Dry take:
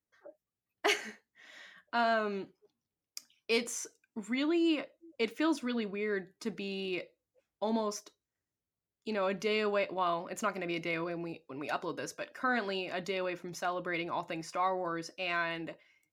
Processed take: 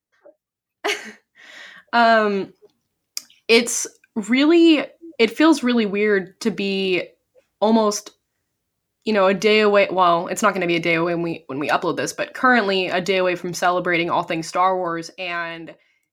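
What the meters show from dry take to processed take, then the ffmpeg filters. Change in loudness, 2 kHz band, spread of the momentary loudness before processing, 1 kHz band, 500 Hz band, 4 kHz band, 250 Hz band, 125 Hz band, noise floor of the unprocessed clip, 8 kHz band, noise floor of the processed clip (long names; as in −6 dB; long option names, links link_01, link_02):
+15.5 dB, +14.5 dB, 14 LU, +15.0 dB, +15.5 dB, +14.5 dB, +16.0 dB, +15.5 dB, below −85 dBFS, +15.5 dB, −77 dBFS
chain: -af "dynaudnorm=framelen=170:gausssize=17:maxgain=12dB,volume=4dB"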